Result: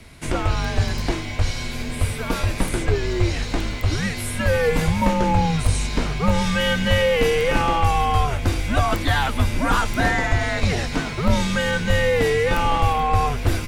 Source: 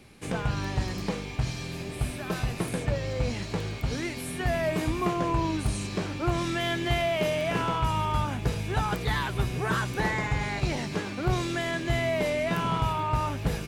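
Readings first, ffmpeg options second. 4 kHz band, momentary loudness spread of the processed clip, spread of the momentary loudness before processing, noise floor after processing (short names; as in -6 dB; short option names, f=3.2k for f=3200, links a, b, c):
+8.0 dB, 7 LU, 6 LU, -29 dBFS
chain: -af "afreqshift=-150,volume=8.5dB"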